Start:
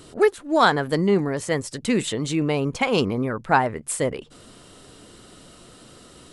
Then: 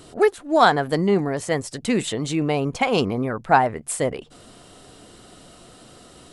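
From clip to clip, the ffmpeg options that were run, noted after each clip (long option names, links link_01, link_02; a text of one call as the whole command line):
ffmpeg -i in.wav -af "equalizer=frequency=720:width_type=o:width=0.32:gain=6.5" out.wav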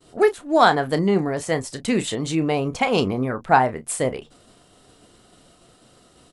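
ffmpeg -i in.wav -filter_complex "[0:a]agate=range=-33dB:threshold=-40dB:ratio=3:detection=peak,asplit=2[link_01][link_02];[link_02]adelay=31,volume=-12dB[link_03];[link_01][link_03]amix=inputs=2:normalize=0" out.wav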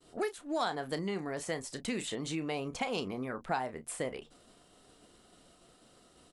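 ffmpeg -i in.wav -filter_complex "[0:a]acrossover=split=1200|3100[link_01][link_02][link_03];[link_01]acompressor=threshold=-26dB:ratio=4[link_04];[link_02]acompressor=threshold=-35dB:ratio=4[link_05];[link_03]acompressor=threshold=-33dB:ratio=4[link_06];[link_04][link_05][link_06]amix=inputs=3:normalize=0,equalizer=frequency=110:width=2.3:gain=-7,volume=-7.5dB" out.wav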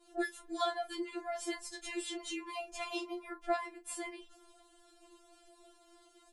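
ffmpeg -i in.wav -af "afftfilt=real='re*4*eq(mod(b,16),0)':imag='im*4*eq(mod(b,16),0)':win_size=2048:overlap=0.75,volume=1dB" out.wav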